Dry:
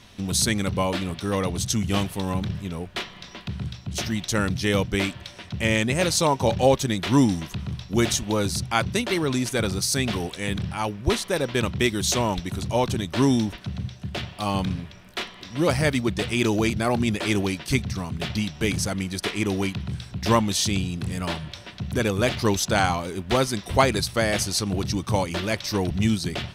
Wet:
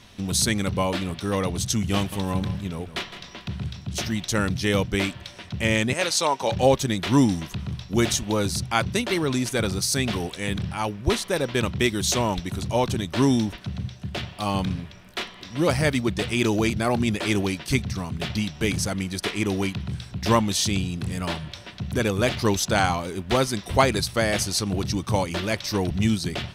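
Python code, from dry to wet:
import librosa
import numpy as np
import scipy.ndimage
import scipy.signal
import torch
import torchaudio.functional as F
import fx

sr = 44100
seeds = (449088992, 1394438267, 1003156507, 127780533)

y = fx.echo_single(x, sr, ms=161, db=-12.0, at=(1.96, 4.03))
y = fx.weighting(y, sr, curve='A', at=(5.93, 6.52))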